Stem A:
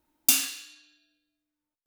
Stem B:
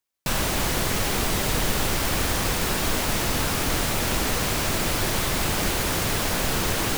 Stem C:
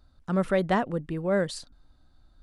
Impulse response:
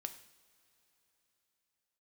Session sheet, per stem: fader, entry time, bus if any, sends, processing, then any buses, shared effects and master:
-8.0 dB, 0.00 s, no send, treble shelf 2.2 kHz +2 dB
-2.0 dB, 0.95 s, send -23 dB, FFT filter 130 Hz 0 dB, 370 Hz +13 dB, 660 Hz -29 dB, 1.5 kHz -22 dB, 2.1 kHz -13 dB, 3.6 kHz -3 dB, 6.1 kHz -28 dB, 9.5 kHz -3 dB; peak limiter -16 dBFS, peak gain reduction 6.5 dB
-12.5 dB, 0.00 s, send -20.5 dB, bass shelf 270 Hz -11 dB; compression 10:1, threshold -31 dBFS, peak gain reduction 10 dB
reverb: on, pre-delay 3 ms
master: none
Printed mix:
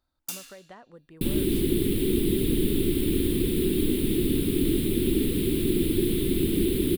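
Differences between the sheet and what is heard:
stem A -8.0 dB -> -16.5 dB; stem B: missing peak limiter -16 dBFS, peak gain reduction 6.5 dB

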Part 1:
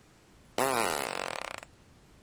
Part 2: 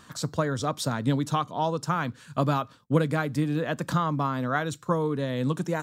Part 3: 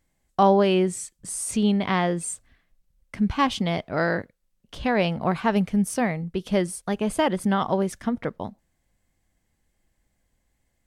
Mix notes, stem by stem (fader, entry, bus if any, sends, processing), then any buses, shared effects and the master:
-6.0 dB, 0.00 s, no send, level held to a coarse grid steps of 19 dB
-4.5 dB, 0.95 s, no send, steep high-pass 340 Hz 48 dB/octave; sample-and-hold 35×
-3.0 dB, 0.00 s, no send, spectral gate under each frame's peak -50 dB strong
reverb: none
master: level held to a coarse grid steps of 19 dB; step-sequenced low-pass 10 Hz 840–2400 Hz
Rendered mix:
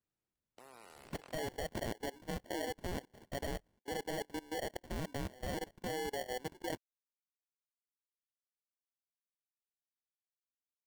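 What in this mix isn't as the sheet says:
stem 1 -6.0 dB -> -14.5 dB; stem 3: muted; master: missing step-sequenced low-pass 10 Hz 840–2400 Hz

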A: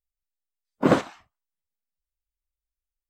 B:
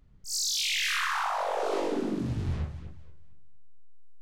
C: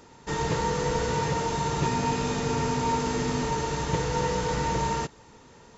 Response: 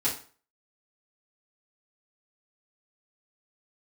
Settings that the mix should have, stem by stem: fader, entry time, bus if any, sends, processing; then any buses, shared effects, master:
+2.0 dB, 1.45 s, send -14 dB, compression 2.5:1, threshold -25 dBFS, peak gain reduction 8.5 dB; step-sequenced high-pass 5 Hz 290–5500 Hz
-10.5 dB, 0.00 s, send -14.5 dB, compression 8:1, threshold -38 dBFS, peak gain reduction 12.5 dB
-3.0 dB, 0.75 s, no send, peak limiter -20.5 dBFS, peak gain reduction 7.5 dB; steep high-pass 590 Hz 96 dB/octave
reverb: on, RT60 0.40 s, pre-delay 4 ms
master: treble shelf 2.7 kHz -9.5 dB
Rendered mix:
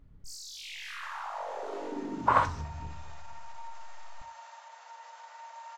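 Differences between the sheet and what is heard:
stem B -10.5 dB -> +1.0 dB; stem C -3.0 dB -> -13.5 dB

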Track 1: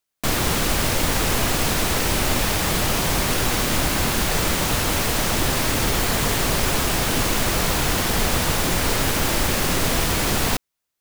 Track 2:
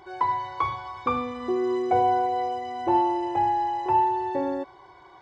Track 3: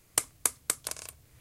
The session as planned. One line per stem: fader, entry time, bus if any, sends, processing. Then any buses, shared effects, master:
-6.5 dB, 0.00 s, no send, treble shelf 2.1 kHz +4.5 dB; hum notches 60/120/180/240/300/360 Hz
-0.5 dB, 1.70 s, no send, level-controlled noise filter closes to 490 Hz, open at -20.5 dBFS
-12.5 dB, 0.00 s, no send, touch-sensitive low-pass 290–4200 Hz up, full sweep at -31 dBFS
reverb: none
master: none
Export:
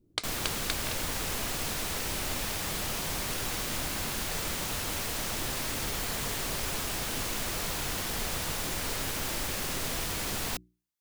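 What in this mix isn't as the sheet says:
stem 1 -6.5 dB -> -14.0 dB; stem 2: muted; stem 3 -12.5 dB -> -3.0 dB

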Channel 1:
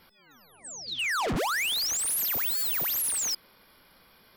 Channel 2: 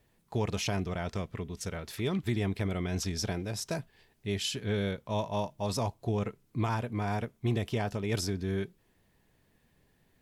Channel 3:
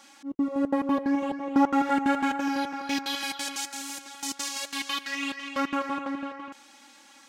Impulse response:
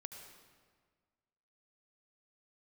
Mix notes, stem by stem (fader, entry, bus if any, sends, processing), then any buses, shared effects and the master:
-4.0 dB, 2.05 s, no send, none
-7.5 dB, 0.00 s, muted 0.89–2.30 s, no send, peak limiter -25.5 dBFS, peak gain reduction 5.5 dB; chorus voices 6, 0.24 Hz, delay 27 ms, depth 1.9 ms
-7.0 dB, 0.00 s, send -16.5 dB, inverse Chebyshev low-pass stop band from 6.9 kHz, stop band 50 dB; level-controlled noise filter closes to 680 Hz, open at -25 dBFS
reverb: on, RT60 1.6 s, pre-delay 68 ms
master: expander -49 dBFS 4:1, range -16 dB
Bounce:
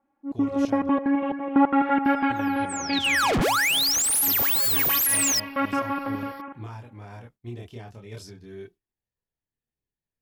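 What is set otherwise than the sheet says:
stem 1 -4.0 dB -> +6.0 dB; stem 2: missing peak limiter -25.5 dBFS, peak gain reduction 5.5 dB; stem 3 -7.0 dB -> +2.0 dB

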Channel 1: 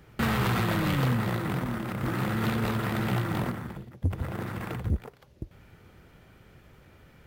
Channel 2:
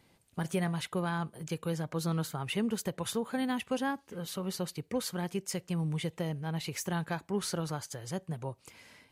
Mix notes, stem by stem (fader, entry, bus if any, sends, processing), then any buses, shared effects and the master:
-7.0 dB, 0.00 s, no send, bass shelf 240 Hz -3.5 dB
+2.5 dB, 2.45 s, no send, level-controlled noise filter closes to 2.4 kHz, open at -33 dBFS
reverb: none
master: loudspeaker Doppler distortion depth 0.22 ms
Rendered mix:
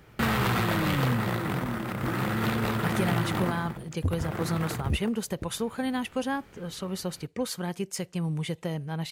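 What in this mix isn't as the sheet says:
stem 1 -7.0 dB -> +2.0 dB; master: missing loudspeaker Doppler distortion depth 0.22 ms

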